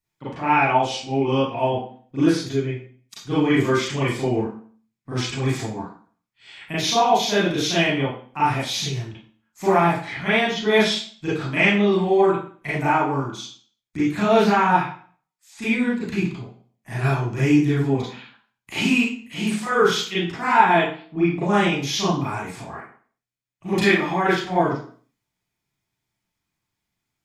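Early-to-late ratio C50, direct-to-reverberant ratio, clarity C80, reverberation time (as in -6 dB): 1.5 dB, -10.5 dB, 6.5 dB, 0.45 s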